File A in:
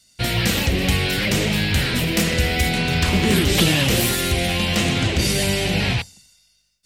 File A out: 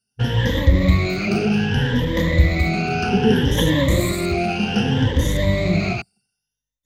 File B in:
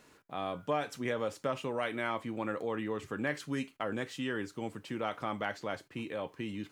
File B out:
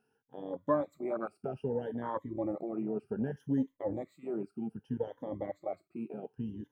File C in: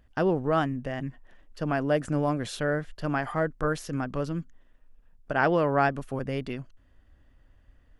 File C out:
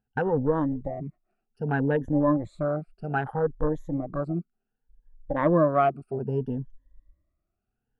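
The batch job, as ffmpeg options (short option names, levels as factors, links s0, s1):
-af "afftfilt=real='re*pow(10,21/40*sin(2*PI*(1.1*log(max(b,1)*sr/1024/100)/log(2)-(0.64)*(pts-256)/sr)))':imag='im*pow(10,21/40*sin(2*PI*(1.1*log(max(b,1)*sr/1024/100)/log(2)-(0.64)*(pts-256)/sr)))':win_size=1024:overlap=0.75,afwtdn=0.0501,equalizer=f=4900:t=o:w=2.8:g=-11,volume=0.841"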